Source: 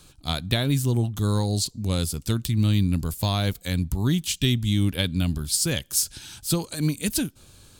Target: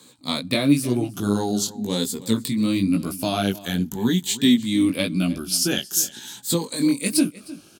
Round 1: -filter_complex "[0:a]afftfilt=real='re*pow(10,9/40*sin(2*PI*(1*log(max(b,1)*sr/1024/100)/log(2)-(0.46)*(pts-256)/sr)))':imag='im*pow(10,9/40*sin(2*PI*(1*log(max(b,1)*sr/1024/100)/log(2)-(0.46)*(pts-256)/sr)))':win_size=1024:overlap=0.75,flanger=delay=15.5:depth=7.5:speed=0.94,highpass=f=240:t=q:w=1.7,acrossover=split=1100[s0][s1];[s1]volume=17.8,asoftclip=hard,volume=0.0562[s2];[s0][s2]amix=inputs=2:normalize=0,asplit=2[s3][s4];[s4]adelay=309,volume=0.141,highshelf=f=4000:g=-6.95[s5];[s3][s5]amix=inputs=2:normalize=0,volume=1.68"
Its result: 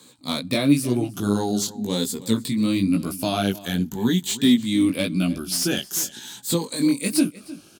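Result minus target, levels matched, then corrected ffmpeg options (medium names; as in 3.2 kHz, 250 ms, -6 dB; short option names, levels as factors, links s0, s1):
overload inside the chain: distortion +28 dB
-filter_complex "[0:a]afftfilt=real='re*pow(10,9/40*sin(2*PI*(1*log(max(b,1)*sr/1024/100)/log(2)-(0.46)*(pts-256)/sr)))':imag='im*pow(10,9/40*sin(2*PI*(1*log(max(b,1)*sr/1024/100)/log(2)-(0.46)*(pts-256)/sr)))':win_size=1024:overlap=0.75,flanger=delay=15.5:depth=7.5:speed=0.94,highpass=f=240:t=q:w=1.7,acrossover=split=1100[s0][s1];[s1]volume=4.73,asoftclip=hard,volume=0.211[s2];[s0][s2]amix=inputs=2:normalize=0,asplit=2[s3][s4];[s4]adelay=309,volume=0.141,highshelf=f=4000:g=-6.95[s5];[s3][s5]amix=inputs=2:normalize=0,volume=1.68"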